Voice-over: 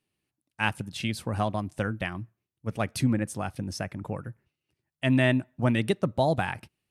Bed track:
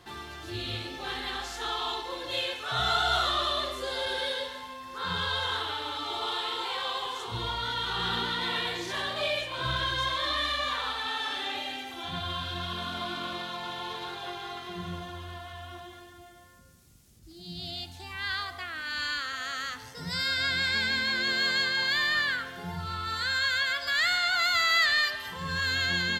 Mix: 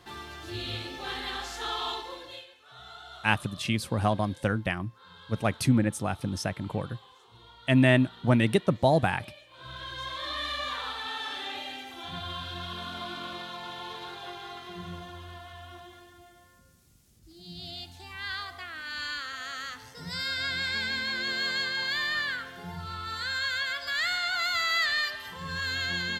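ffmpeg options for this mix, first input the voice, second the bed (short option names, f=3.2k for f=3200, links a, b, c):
-filter_complex "[0:a]adelay=2650,volume=2dB[a];[1:a]volume=17dB,afade=t=out:st=1.89:d=0.57:silence=0.1,afade=t=in:st=9.47:d=1.1:silence=0.133352[b];[a][b]amix=inputs=2:normalize=0"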